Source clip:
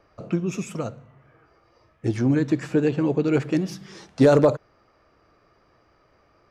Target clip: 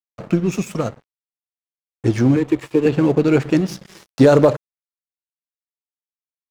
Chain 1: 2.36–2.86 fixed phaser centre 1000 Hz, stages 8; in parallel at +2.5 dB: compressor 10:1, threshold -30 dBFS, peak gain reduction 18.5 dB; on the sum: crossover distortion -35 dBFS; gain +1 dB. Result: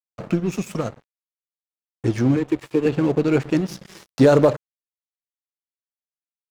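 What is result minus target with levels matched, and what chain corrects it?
compressor: peak gain reduction +9.5 dB
2.36–2.86 fixed phaser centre 1000 Hz, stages 8; in parallel at +2.5 dB: compressor 10:1, threshold -19.5 dBFS, peak gain reduction 9 dB; on the sum: crossover distortion -35 dBFS; gain +1 dB

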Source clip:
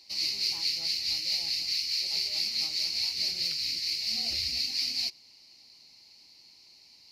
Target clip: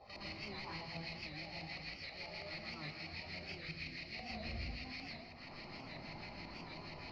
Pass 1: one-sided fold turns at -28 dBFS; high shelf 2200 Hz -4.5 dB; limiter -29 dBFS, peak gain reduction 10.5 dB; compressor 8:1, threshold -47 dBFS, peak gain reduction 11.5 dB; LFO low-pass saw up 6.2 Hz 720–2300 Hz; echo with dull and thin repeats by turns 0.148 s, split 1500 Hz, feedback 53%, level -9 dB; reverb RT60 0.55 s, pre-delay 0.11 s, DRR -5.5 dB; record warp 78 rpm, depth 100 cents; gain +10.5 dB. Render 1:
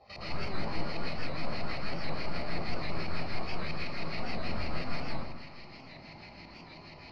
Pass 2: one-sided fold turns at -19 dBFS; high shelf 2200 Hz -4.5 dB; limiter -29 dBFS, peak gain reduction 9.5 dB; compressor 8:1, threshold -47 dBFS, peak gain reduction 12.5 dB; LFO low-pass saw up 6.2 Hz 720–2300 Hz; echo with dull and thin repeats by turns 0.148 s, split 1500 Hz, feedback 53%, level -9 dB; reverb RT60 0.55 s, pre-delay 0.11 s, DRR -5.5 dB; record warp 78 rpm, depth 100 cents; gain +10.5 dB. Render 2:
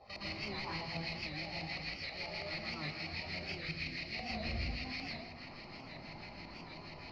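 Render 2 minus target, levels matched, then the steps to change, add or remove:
compressor: peak gain reduction -5 dB
change: compressor 8:1, threshold -53 dBFS, peak gain reduction 18 dB

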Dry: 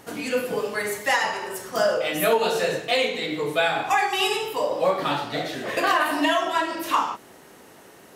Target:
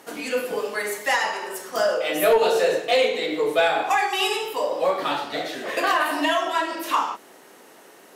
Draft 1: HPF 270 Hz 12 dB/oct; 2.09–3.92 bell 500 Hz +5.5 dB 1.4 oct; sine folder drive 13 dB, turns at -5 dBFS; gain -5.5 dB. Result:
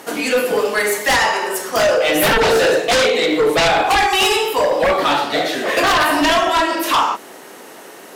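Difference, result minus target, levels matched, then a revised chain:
sine folder: distortion +20 dB
HPF 270 Hz 12 dB/oct; 2.09–3.92 bell 500 Hz +5.5 dB 1.4 oct; sine folder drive 2 dB, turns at -5 dBFS; gain -5.5 dB

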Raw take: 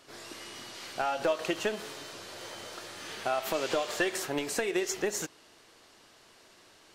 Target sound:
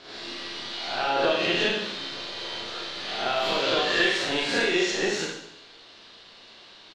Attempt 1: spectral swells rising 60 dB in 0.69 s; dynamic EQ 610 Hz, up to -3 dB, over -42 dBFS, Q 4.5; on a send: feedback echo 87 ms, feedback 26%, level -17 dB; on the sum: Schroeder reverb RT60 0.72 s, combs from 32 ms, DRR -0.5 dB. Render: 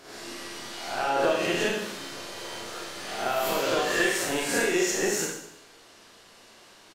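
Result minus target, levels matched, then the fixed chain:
4000 Hz band -5.0 dB
spectral swells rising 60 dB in 0.69 s; dynamic EQ 610 Hz, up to -3 dB, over -42 dBFS, Q 4.5; synth low-pass 3900 Hz, resonance Q 3; on a send: feedback echo 87 ms, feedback 26%, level -17 dB; on the sum: Schroeder reverb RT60 0.72 s, combs from 32 ms, DRR -0.5 dB

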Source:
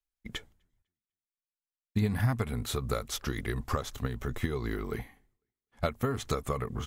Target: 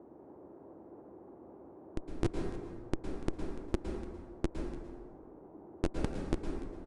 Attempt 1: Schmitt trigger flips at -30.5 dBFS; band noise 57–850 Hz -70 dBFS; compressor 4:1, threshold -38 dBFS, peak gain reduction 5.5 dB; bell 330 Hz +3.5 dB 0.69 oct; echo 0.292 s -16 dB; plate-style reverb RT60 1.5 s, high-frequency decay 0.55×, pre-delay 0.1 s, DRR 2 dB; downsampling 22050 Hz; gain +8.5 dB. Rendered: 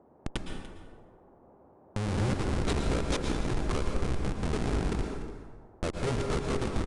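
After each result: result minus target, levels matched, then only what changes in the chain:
Schmitt trigger: distortion -18 dB; 250 Hz band -2.0 dB
change: Schmitt trigger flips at -19.5 dBFS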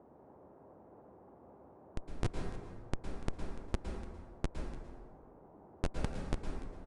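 250 Hz band -3.0 dB
change: bell 330 Hz +14.5 dB 0.69 oct

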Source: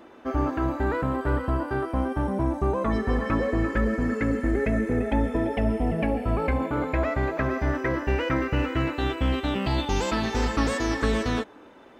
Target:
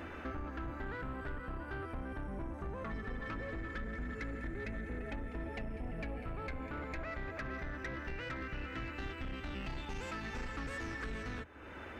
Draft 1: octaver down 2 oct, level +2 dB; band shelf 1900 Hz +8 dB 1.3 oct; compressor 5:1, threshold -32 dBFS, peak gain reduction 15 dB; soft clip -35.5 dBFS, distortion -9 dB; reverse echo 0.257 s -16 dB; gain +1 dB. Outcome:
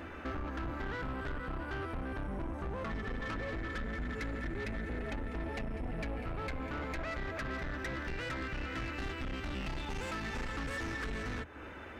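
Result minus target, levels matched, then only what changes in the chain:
compressor: peak gain reduction -6 dB
change: compressor 5:1, threshold -39.5 dBFS, peak gain reduction 21 dB

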